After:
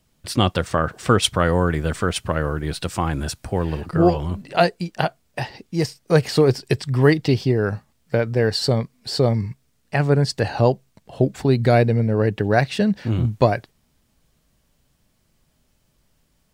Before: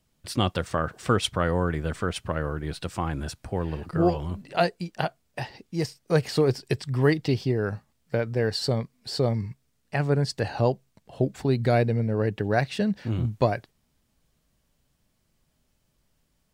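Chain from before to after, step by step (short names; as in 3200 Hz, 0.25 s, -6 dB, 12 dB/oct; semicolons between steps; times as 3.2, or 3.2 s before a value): 1.22–3.82 high shelf 4700 Hz +5 dB; gain +6 dB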